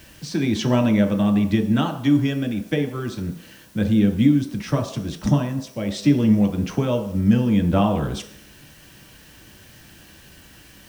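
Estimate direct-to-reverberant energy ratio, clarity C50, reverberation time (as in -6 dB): 3.0 dB, 9.5 dB, not exponential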